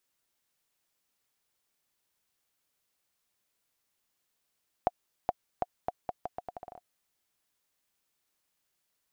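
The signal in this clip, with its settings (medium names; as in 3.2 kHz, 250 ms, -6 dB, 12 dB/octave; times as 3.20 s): bouncing ball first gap 0.42 s, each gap 0.79, 720 Hz, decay 33 ms -12.5 dBFS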